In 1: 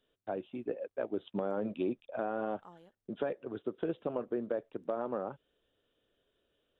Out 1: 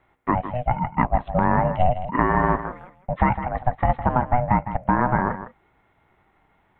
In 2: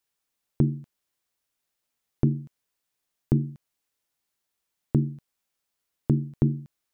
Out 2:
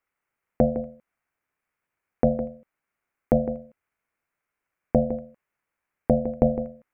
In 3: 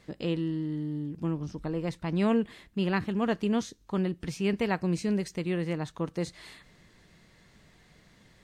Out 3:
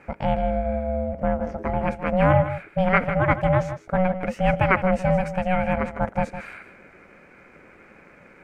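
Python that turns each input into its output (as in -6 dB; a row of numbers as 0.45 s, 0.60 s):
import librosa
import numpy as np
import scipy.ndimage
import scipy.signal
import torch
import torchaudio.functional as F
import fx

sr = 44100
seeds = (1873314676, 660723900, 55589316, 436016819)

y = fx.high_shelf_res(x, sr, hz=2600.0, db=-11.5, q=3.0)
y = y * np.sin(2.0 * np.pi * 370.0 * np.arange(len(y)) / sr)
y = y + 10.0 ** (-11.5 / 20.0) * np.pad(y, (int(158 * sr / 1000.0), 0))[:len(y)]
y = librosa.util.normalize(y) * 10.0 ** (-3 / 20.0)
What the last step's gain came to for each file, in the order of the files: +17.5 dB, +4.5 dB, +10.0 dB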